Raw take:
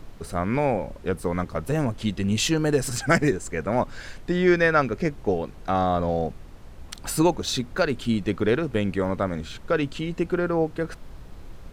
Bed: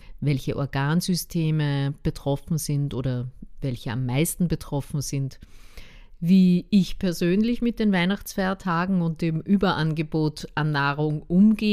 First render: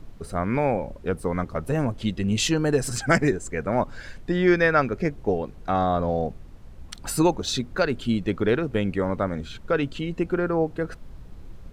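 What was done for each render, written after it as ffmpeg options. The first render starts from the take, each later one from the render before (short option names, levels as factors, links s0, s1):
-af "afftdn=nr=6:nf=-43"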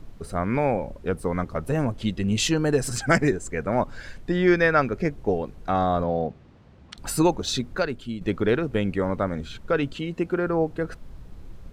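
-filter_complex "[0:a]asettb=1/sr,asplit=3[s0][s1][s2];[s0]atrim=end=6.044[s3];[s1]atrim=start=6.04:end=6.98,asetpts=PTS-STARTPTS,afade=t=in:d=0.004:c=qsin,afade=t=out:st=0.936:d=0.004:c=qsin,highpass=100,lowpass=4400[s4];[s2]atrim=start=6.976[s5];[s3][s4]acrossfade=d=0.004:c1=hsin:c2=qsin[s6];[s6][s5]acrossfade=d=0.004:c1=qsin:c2=hsin,asettb=1/sr,asplit=3[s7][s8][s9];[s7]atrim=end=9.954[s10];[s8]atrim=start=9.95:end=10.47,asetpts=PTS-STARTPTS,afade=t=in:d=0.004:c=qsin,afade=t=out:st=0.516:d=0.004:c=qsin,highpass=f=110:p=1[s11];[s9]atrim=start=10.466[s12];[s10][s11]acrossfade=d=0.004:c1=hsin:c2=qsin[s13];[s13][s12]acrossfade=d=0.004:c1=qsin:c2=hsin,asplit=2[s14][s15];[s14]atrim=end=8.21,asetpts=PTS-STARTPTS,afade=t=out:st=7.72:d=0.49:c=qua:silence=0.354813[s16];[s15]atrim=start=8.21,asetpts=PTS-STARTPTS,afade=t=in:d=0.004:c=hsin:silence=0.354813[s17];[s16][s17]concat=n=2:v=0:a=1"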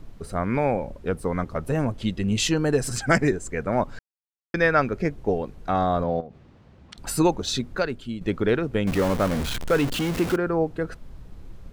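-filter_complex "[0:a]asettb=1/sr,asplit=3[s0][s1][s2];[s0]atrim=end=6.204[s3];[s1]atrim=start=6.2:end=7.07,asetpts=PTS-STARTPTS,afade=t=in:d=0.004:c=qsin,afade=t=out:st=0.866:d=0.004:c=qsin,acompressor=threshold=0.0178:ratio=6:attack=3.2:release=140:knee=1:detection=peak[s4];[s2]atrim=start=7.066[s5];[s3][s4]acrossfade=d=0.004:c1=hsin:c2=qsin[s6];[s6][s5]acrossfade=d=0.004:c1=qsin:c2=hsin,asettb=1/sr,asplit=3[s7][s8][s9];[s7]atrim=end=8.874[s10];[s8]atrim=start=8.87:end=10.36,asetpts=PTS-STARTPTS,afade=t=in:d=0.004:c=qsin,afade=t=out:st=1.486:d=0.004:c=qsin,aeval=exprs='val(0)+0.5*0.0596*sgn(val(0))':c=same[s11];[s9]atrim=start=10.356[s12];[s10][s11]acrossfade=d=0.004:c1=hsin:c2=qsin[s13];[s13][s12]acrossfade=d=0.004:c1=qsin:c2=hsin,asplit=3[s14][s15][s16];[s14]atrim=end=3.99,asetpts=PTS-STARTPTS,afade=t=out:st=3.986:d=0.004:c=hsin[s17];[s15]atrim=start=3.99:end=4.54,asetpts=PTS-STARTPTS,volume=0[s18];[s16]atrim=start=4.54,asetpts=PTS-STARTPTS,afade=t=in:d=0.004:c=hsin[s19];[s17][s18][s19]concat=n=3:v=0:a=1"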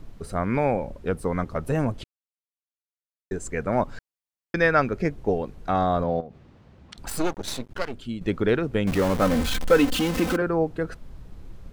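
-filter_complex "[0:a]asettb=1/sr,asplit=3[s0][s1][s2];[s0]atrim=end=7.084[s3];[s1]atrim=start=7.08:end=7.94,asetpts=PTS-STARTPTS,afade=t=in:d=0.004:c=qsin,afade=t=out:st=0.856:d=0.004:c=qsin,aeval=exprs='max(val(0),0)':c=same[s4];[s2]atrim=start=7.936[s5];[s3][s4]acrossfade=d=0.004:c1=hsin:c2=qsin[s6];[s6][s5]acrossfade=d=0.004:c1=qsin:c2=hsin,asettb=1/sr,asplit=3[s7][s8][s9];[s7]atrim=end=9.214[s10];[s8]atrim=start=9.21:end=10.42,asetpts=PTS-STARTPTS,afade=t=in:d=0.004:c=qsin,afade=t=out:st=1.206:d=0.004:c=qsin,aecho=1:1:3.9:0.82,atrim=end_sample=53361[s11];[s9]atrim=start=10.416[s12];[s10][s11]acrossfade=d=0.004:c1=hsin:c2=qsin[s13];[s13][s12]acrossfade=d=0.004:c1=qsin:c2=hsin,asplit=3[s14][s15][s16];[s14]atrim=end=2.04,asetpts=PTS-STARTPTS,afade=t=out:st=2.036:d=0.004:c=hsin[s17];[s15]atrim=start=2.04:end=3.31,asetpts=PTS-STARTPTS,volume=0[s18];[s16]atrim=start=3.31,asetpts=PTS-STARTPTS,afade=t=in:d=0.004:c=hsin[s19];[s17][s18][s19]concat=n=3:v=0:a=1"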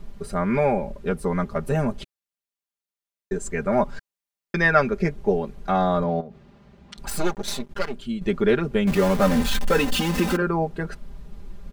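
-af "aecho=1:1:5:0.77"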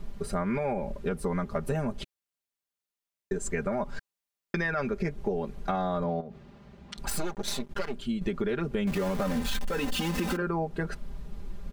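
-af "alimiter=limit=0.2:level=0:latency=1,acompressor=threshold=0.0501:ratio=6"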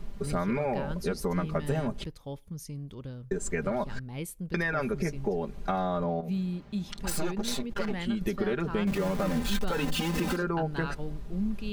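-filter_complex "[1:a]volume=0.188[s0];[0:a][s0]amix=inputs=2:normalize=0"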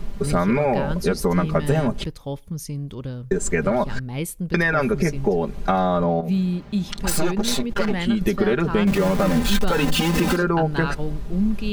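-af "volume=2.99"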